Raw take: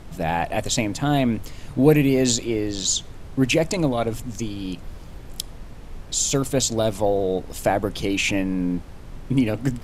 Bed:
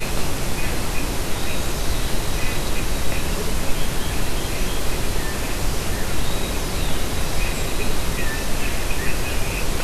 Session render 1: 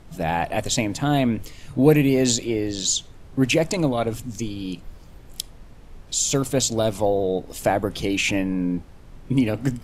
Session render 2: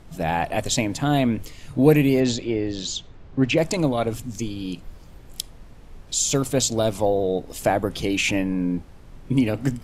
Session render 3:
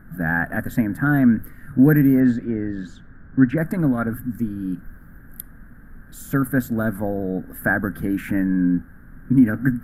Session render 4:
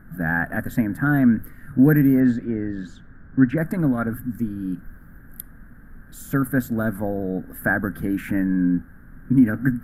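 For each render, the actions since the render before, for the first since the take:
noise print and reduce 6 dB
2.2–3.58 air absorption 130 m
EQ curve 110 Hz 0 dB, 250 Hz +8 dB, 370 Hz -6 dB, 1000 Hz -7 dB, 1600 Hz +15 dB, 2500 Hz -21 dB, 6700 Hz -27 dB, 12000 Hz +6 dB
gain -1 dB

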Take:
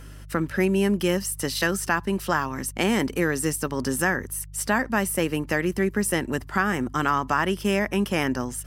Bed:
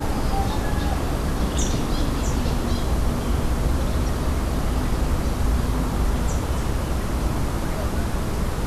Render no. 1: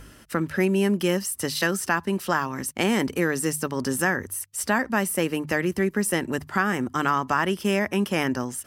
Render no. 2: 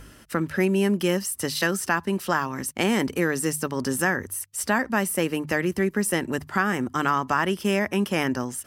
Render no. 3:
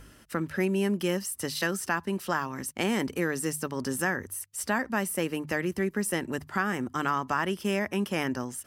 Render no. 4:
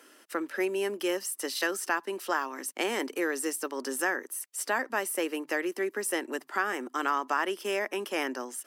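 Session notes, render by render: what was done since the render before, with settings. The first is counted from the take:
de-hum 50 Hz, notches 3
nothing audible
gain -5 dB
steep high-pass 290 Hz 36 dB/oct

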